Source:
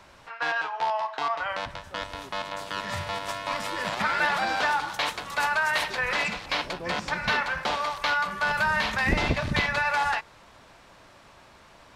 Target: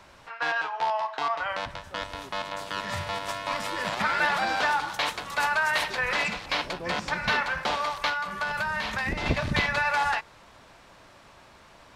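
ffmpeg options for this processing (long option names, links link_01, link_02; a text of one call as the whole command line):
ffmpeg -i in.wav -filter_complex "[0:a]asettb=1/sr,asplit=3[link_01][link_02][link_03];[link_01]atrim=end=8.084[link_04];[link_02]atrim=start=8.08:end=9.26,asetpts=PTS-STARTPTS,afade=type=in:duration=0.004:curve=qsin,afade=type=out:start_time=1.176:duration=0.004:curve=qsin,acompressor=threshold=-26dB:ratio=6[link_05];[link_03]atrim=start=9.256[link_06];[link_04][link_05]acrossfade=duration=0.004:curve1=hsin:curve2=qsin[link_07];[link_07][link_06]acrossfade=duration=0.004:curve1=qsin:curve2=hsin" out.wav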